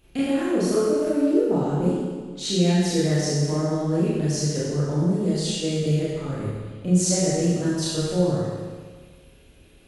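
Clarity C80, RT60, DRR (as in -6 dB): -0.5 dB, 1.6 s, -9.5 dB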